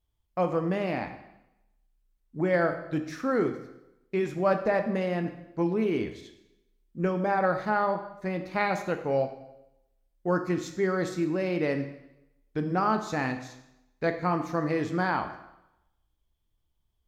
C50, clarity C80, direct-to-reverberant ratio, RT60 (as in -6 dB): 9.5 dB, 12.0 dB, 6.5 dB, 0.90 s